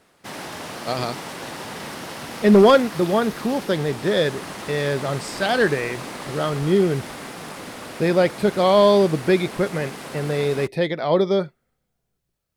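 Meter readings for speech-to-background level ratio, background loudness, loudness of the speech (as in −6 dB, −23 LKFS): 13.5 dB, −34.0 LKFS, −20.5 LKFS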